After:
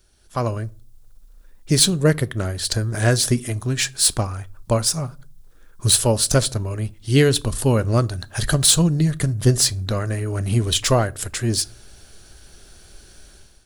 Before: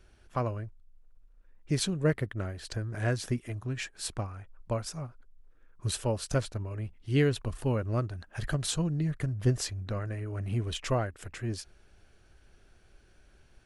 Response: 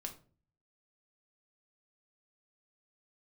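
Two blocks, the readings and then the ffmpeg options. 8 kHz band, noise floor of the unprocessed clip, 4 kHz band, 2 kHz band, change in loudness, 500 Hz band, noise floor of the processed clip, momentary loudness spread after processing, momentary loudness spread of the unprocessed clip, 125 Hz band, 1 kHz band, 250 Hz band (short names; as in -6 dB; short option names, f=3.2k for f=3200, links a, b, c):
+19.5 dB, -60 dBFS, +17.5 dB, +11.0 dB, +13.0 dB, +11.0 dB, -48 dBFS, 11 LU, 10 LU, +10.5 dB, +10.5 dB, +11.0 dB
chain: -filter_complex "[0:a]dynaudnorm=f=110:g=7:m=14.5dB,aexciter=amount=1.7:drive=9.6:freq=3.5k,asplit=2[a][b];[1:a]atrim=start_sample=2205[c];[b][c]afir=irnorm=-1:irlink=0,volume=-9dB[d];[a][d]amix=inputs=2:normalize=0,volume=-4dB"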